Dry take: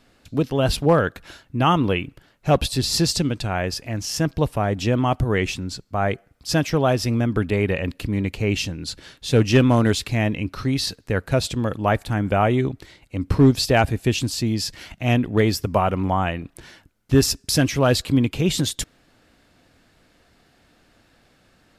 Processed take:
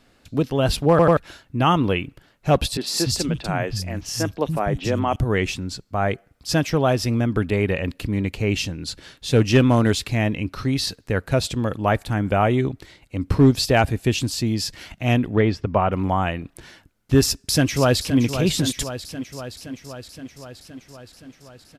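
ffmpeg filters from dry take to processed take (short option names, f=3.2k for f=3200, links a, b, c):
-filter_complex "[0:a]asettb=1/sr,asplit=3[a][b][c];[a]atrim=end=2.774[d];[b]atrim=start=2.77:end=5.16,asetpts=PTS-STARTPTS,afade=t=in:d=0.004:c=qsin,afade=t=out:st=2.386:d=0.004:c=qsin,acrossover=split=210|3500[e][f][g];[g]adelay=40[h];[e]adelay=290[i];[i][f][h]amix=inputs=3:normalize=0,atrim=end_sample=105399[j];[c]atrim=start=5.156[k];[d][j]acrossfade=d=0.004:c1=hsin:c2=qsin[l];[l][k]acrossfade=d=0.004:c1=qsin:c2=hsin,asettb=1/sr,asplit=3[m][n][o];[m]atrim=end=15.364[p];[n]atrim=start=15.36:end=15.92,asetpts=PTS-STARTPTS,afade=t=in:d=0.004:c=qsin,afade=t=out:st=0.556:d=0.004:c=qsin,lowpass=2.8k[q];[o]atrim=start=15.916[r];[p][q]acrossfade=d=0.004:c1=hsin:c2=qsin[s];[s][r]acrossfade=d=0.004:c1=qsin:c2=hsin,asplit=2[t][u];[u]afade=t=in:st=17.24:d=0.01,afade=t=out:st=18.19:d=0.01,aecho=0:1:520|1040|1560|2080|2600|3120|3640|4160|4680|5200:0.316228|0.221359|0.154952|0.108466|0.0759263|0.0531484|0.0372039|0.0260427|0.0182299|0.0127609[v];[t][v]amix=inputs=2:normalize=0,asplit=4[w][x][y][z];[w]atrim=end=0.992[aa];[x]atrim=start=0.898:end=0.992[ab];[y]atrim=start=0.898:end=0.992[ac];[z]atrim=start=1.168[ad];[aa][ab]acrossfade=d=0.004:c1=hsin:c2=hsin[ae];[ae][ac]acrossfade=d=0.004:c1=hsin:c2=hsin[af];[af][ad]acrossfade=d=0.004:c1=hsin:c2=hsin"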